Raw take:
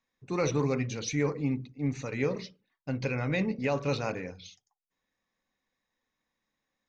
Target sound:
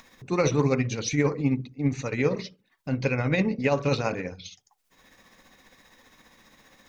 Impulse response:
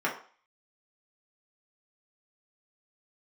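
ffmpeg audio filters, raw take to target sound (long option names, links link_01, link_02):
-af "acompressor=mode=upward:threshold=-42dB:ratio=2.5,tremolo=f=15:d=0.45,volume=7dB"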